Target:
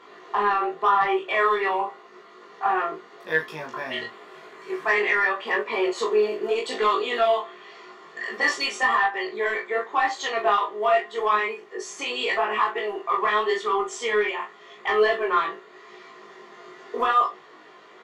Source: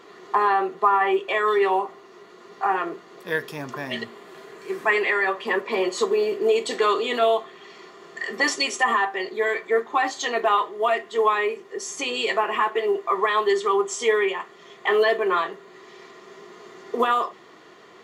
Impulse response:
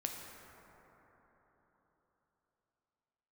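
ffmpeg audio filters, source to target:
-filter_complex "[0:a]asplit=2[link_01][link_02];[link_02]highpass=frequency=720:poles=1,volume=10dB,asoftclip=type=tanh:threshold=-7dB[link_03];[link_01][link_03]amix=inputs=2:normalize=0,lowpass=frequency=2600:poles=1,volume=-6dB,flanger=delay=18:depth=6.9:speed=0.87,aecho=1:1:19|38:0.596|0.335,volume=-1.5dB"

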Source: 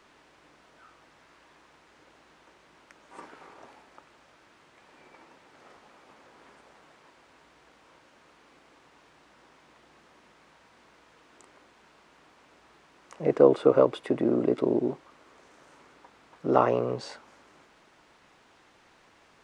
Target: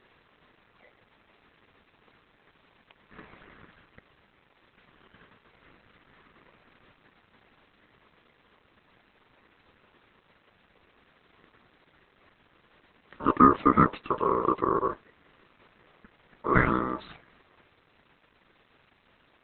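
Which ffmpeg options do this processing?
ffmpeg -i in.wav -filter_complex "[0:a]asplit=3[link_01][link_02][link_03];[link_01]afade=type=out:start_time=13.25:duration=0.02[link_04];[link_02]bandreject=frequency=50:width_type=h:width=6,bandreject=frequency=100:width_type=h:width=6,bandreject=frequency=150:width_type=h:width=6,bandreject=frequency=200:width_type=h:width=6,bandreject=frequency=250:width_type=h:width=6,afade=type=in:start_time=13.25:duration=0.02,afade=type=out:start_time=14.07:duration=0.02[link_05];[link_03]afade=type=in:start_time=14.07:duration=0.02[link_06];[link_04][link_05][link_06]amix=inputs=3:normalize=0,aeval=exprs='val(0)*sin(2*PI*750*n/s)':channel_layout=same,volume=3dB" -ar 48000 -c:a libopus -b:a 8k out.opus

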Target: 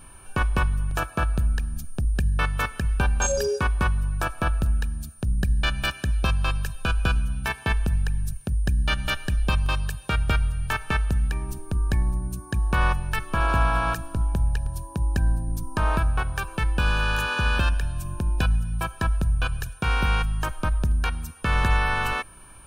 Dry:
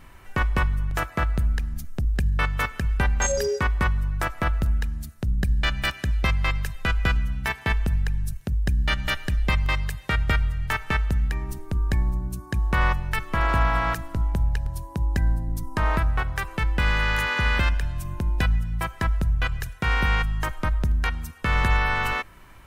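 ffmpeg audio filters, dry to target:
ffmpeg -i in.wav -af "aeval=exprs='val(0)+0.00316*sin(2*PI*9300*n/s)':channel_layout=same,asuperstop=centerf=2000:order=8:qfactor=5.1" out.wav

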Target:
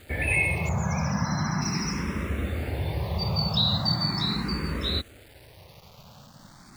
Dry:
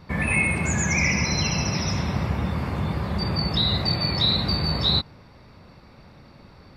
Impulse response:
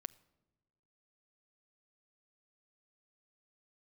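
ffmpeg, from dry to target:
-filter_complex "[0:a]acrusher=bits=7:mix=0:aa=0.000001,asettb=1/sr,asplit=3[link_01][link_02][link_03];[link_01]atrim=end=0.694[link_04];[link_02]atrim=start=0.69:end=1.62,asetpts=PTS-STARTPTS,afade=type=in:duration=0.004:curve=qsin,afade=type=out:start_time=0.926:duration=0.004:curve=qsin,highshelf=frequency=2200:width_type=q:width=3:gain=-9[link_05];[link_03]atrim=start=1.616[link_06];[link_04][link_05]acrossfade=duration=0.004:curve1=hsin:curve2=qsin[link_07];[link_07][link_06]acrossfade=duration=0.004:curve1=qsin:curve2=hsin,asplit=2[link_08][link_09];[link_09]afreqshift=0.39[link_10];[link_08][link_10]amix=inputs=2:normalize=1"

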